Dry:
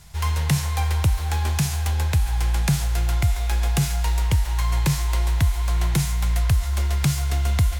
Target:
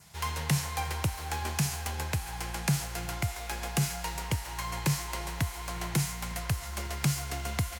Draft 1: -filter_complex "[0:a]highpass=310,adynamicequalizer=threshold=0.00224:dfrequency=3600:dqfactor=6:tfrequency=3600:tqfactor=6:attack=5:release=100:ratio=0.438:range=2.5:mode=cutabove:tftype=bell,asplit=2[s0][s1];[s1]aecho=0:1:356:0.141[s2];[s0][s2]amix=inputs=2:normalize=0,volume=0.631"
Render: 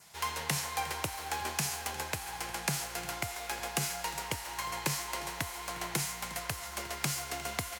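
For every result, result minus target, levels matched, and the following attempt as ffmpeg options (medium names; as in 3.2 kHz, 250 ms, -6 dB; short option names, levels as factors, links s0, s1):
125 Hz band -8.5 dB; echo-to-direct +8 dB
-filter_complex "[0:a]highpass=140,adynamicequalizer=threshold=0.00224:dfrequency=3600:dqfactor=6:tfrequency=3600:tqfactor=6:attack=5:release=100:ratio=0.438:range=2.5:mode=cutabove:tftype=bell,asplit=2[s0][s1];[s1]aecho=0:1:356:0.141[s2];[s0][s2]amix=inputs=2:normalize=0,volume=0.631"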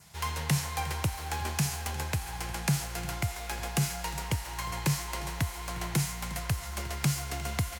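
echo-to-direct +8 dB
-filter_complex "[0:a]highpass=140,adynamicequalizer=threshold=0.00224:dfrequency=3600:dqfactor=6:tfrequency=3600:tqfactor=6:attack=5:release=100:ratio=0.438:range=2.5:mode=cutabove:tftype=bell,asplit=2[s0][s1];[s1]aecho=0:1:356:0.0562[s2];[s0][s2]amix=inputs=2:normalize=0,volume=0.631"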